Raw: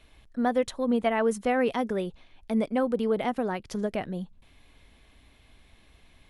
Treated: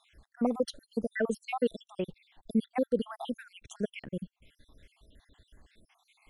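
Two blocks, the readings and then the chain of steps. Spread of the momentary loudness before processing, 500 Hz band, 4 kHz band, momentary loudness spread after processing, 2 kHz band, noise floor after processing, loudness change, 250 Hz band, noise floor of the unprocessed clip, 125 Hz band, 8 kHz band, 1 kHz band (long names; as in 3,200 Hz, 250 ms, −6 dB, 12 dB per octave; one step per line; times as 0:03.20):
11 LU, −6.0 dB, −4.5 dB, 10 LU, −7.0 dB, −83 dBFS, −6.0 dB, −5.0 dB, −59 dBFS, −4.0 dB, −6.0 dB, −9.5 dB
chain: time-frequency cells dropped at random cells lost 67%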